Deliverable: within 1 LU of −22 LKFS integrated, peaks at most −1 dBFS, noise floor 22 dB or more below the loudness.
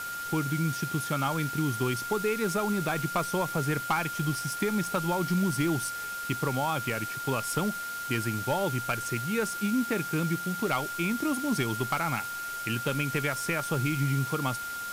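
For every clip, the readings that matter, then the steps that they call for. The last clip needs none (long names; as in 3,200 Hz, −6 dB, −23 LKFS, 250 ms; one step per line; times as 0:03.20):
interfering tone 1,400 Hz; level of the tone −34 dBFS; background noise floor −36 dBFS; target noise floor −52 dBFS; integrated loudness −29.5 LKFS; sample peak −16.5 dBFS; target loudness −22.0 LKFS
→ notch filter 1,400 Hz, Q 30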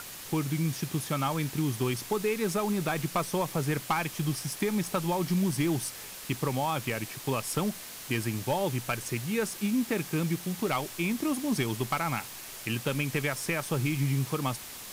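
interfering tone none found; background noise floor −43 dBFS; target noise floor −53 dBFS
→ noise reduction from a noise print 10 dB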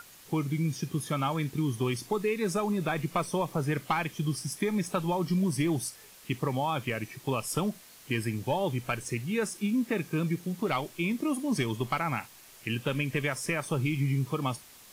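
background noise floor −53 dBFS; integrated loudness −31.0 LKFS; sample peak −17.0 dBFS; target loudness −22.0 LKFS
→ level +9 dB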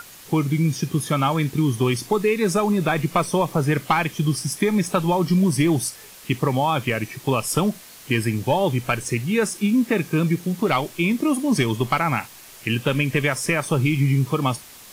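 integrated loudness −22.0 LKFS; sample peak −8.0 dBFS; background noise floor −44 dBFS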